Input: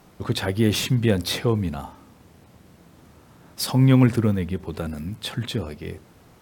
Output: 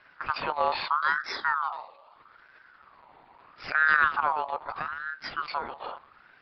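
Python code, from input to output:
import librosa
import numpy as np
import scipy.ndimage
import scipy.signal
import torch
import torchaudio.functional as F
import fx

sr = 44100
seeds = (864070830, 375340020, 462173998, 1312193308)

p1 = fx.spec_erase(x, sr, start_s=0.87, length_s=1.3, low_hz=520.0, high_hz=1600.0)
p2 = np.clip(10.0 ** (20.0 / 20.0) * p1, -1.0, 1.0) / 10.0 ** (20.0 / 20.0)
p3 = p1 + (p2 * librosa.db_to_amplitude(-3.0))
p4 = fx.lpc_monotone(p3, sr, seeds[0], pitch_hz=150.0, order=10)
p5 = fx.ring_lfo(p4, sr, carrier_hz=1200.0, swing_pct=30, hz=0.78)
y = p5 * librosa.db_to_amplitude(-6.5)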